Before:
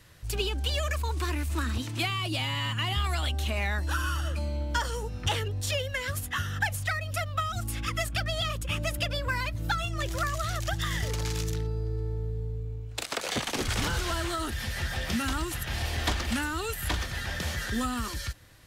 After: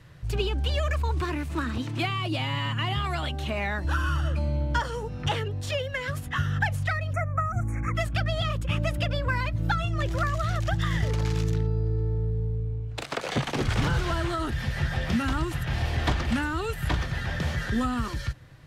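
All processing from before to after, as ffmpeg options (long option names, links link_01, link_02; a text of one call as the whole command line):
ffmpeg -i in.wav -filter_complex "[0:a]asettb=1/sr,asplit=3[link_01][link_02][link_03];[link_01]atrim=end=1.214[link_04];[link_02]atrim=start=1.21:end=3.85,asetpts=PTS-STARTPTS,afade=type=in:duration=0.004:curve=qsin,afade=type=out:start_time=2.636:duration=0.004:curve=qsin,highpass=frequency=250:poles=1,lowshelf=frequency=430:gain=4,acrusher=bits=8:mode=log:mix=0:aa=0.000001[link_05];[link_03]atrim=start=3.846[link_06];[link_04][link_05]acrossfade=duration=0.004:curve1=hsin:curve2=qsin[link_07];[link_07][link_06]acrossfade=duration=0.004:curve1=qsin:curve2=hsin,asettb=1/sr,asplit=3[link_08][link_09][link_10];[link_08]atrim=end=4.804[link_11];[link_09]atrim=start=4.8:end=6.27,asetpts=PTS-STARTPTS,afade=type=in:duration=0.004:curve=qsin,afade=type=out:start_time=1.466:duration=0.004:curve=qsin,lowshelf=frequency=120:gain=-8.5,acompressor=mode=upward:threshold=-35dB:ratio=2.5:attack=3.2:release=140:knee=2.83:detection=peak[link_12];[link_10]atrim=start=6.266[link_13];[link_11][link_12]acrossfade=duration=0.004:curve1=hsin:curve2=qsin[link_14];[link_14][link_13]acrossfade=duration=0.004:curve1=qsin:curve2=hsin,asettb=1/sr,asplit=3[link_15][link_16][link_17];[link_15]atrim=end=7.134[link_18];[link_16]atrim=start=7.13:end=7.95,asetpts=PTS-STARTPTS,afade=type=in:duration=0.004:curve=qsin,afade=type=out:start_time=0.816:duration=0.004:curve=qsin,acrossover=split=8600[link_19][link_20];[link_20]acompressor=threshold=-53dB:ratio=4:attack=1:release=60[link_21];[link_19][link_21]amix=inputs=2:normalize=0,asuperstop=centerf=3800:order=20:qfactor=1.1[link_22];[link_17]atrim=start=7.946[link_23];[link_18][link_22]acrossfade=duration=0.004:curve1=hsin:curve2=qsin[link_24];[link_24][link_23]acrossfade=duration=0.004:curve1=qsin:curve2=hsin,lowpass=frequency=2000:poles=1,equalizer=frequency=140:width=3.7:gain=11.5,volume=3.5dB" out.wav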